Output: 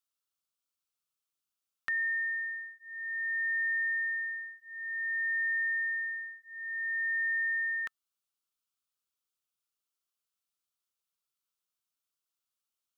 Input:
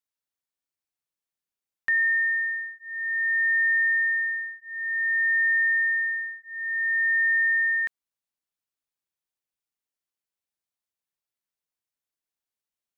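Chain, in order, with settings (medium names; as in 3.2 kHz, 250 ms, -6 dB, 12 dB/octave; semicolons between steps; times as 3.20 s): FFT filter 910 Hz 0 dB, 1.3 kHz +11 dB, 1.8 kHz -4 dB, 2.9 kHz +7 dB; trim -5 dB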